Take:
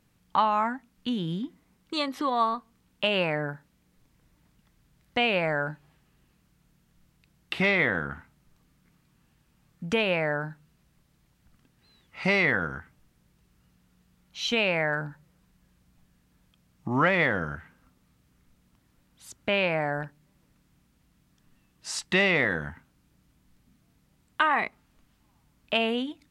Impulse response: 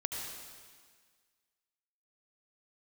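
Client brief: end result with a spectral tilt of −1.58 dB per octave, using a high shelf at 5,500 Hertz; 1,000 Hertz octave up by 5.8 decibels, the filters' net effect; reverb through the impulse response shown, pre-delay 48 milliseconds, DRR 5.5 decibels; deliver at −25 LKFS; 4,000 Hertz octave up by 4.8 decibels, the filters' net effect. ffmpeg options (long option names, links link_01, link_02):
-filter_complex "[0:a]equalizer=frequency=1000:width_type=o:gain=7,equalizer=frequency=4000:width_type=o:gain=9,highshelf=frequency=5500:gain=-7.5,asplit=2[link_01][link_02];[1:a]atrim=start_sample=2205,adelay=48[link_03];[link_02][link_03]afir=irnorm=-1:irlink=0,volume=-8dB[link_04];[link_01][link_04]amix=inputs=2:normalize=0,volume=-2dB"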